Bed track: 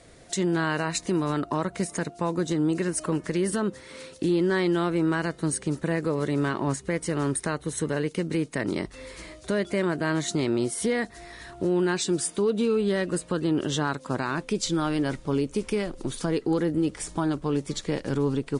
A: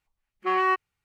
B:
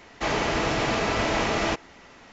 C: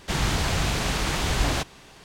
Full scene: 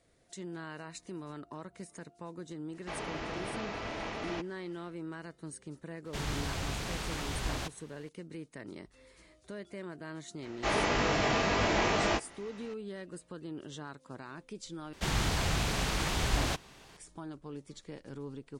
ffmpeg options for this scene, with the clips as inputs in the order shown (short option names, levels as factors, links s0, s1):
-filter_complex "[2:a]asplit=2[s0][s1];[3:a]asplit=2[s2][s3];[0:a]volume=0.133[s4];[s0]lowpass=5700[s5];[s1]asplit=2[s6][s7];[s7]adelay=20,volume=0.708[s8];[s6][s8]amix=inputs=2:normalize=0[s9];[s4]asplit=2[s10][s11];[s10]atrim=end=14.934[s12];[s3]atrim=end=2.04,asetpts=PTS-STARTPTS,volume=0.501[s13];[s11]atrim=start=16.966[s14];[s5]atrim=end=2.32,asetpts=PTS-STARTPTS,volume=0.2,afade=t=in:d=0.1,afade=t=out:st=2.22:d=0.1,adelay=2660[s15];[s2]atrim=end=2.04,asetpts=PTS-STARTPTS,volume=0.266,afade=t=in:d=0.004:c=hsin,afade=t=out:st=2.036:d=0.004:c=hsin,adelay=6050[s16];[s9]atrim=end=2.32,asetpts=PTS-STARTPTS,volume=0.531,afade=t=in:d=0.004:c=hsin,afade=t=out:st=2.316:d=0.004:c=hsin,adelay=459522S[s17];[s12][s13]acrossfade=d=0.004:c1=hsin:c2=hsin[s18];[s18][s14]acrossfade=d=0.004:c1=hsin:c2=hsin[s19];[s19][s15][s16][s17]amix=inputs=4:normalize=0"